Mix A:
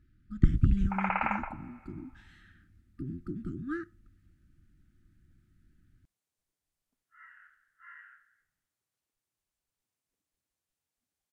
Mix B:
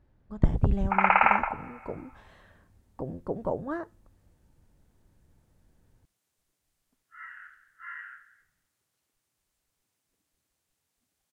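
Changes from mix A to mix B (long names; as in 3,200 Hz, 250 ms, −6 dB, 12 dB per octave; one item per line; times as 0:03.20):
speech: remove linear-phase brick-wall band-stop 370–1,200 Hz
background +10.0 dB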